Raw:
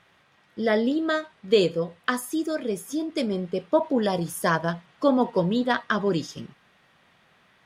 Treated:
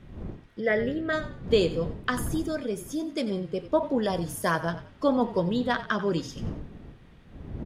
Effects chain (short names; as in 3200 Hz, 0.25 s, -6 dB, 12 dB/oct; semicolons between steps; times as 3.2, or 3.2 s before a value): wind noise 190 Hz -37 dBFS; 0.6–1.13 graphic EQ 125/250/500/1000/2000/4000/8000 Hz +7/-7/+5/-10/+10/-10/-9 dB; on a send: frequency-shifting echo 91 ms, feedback 31%, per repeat -37 Hz, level -14 dB; on the sum: gain -3 dB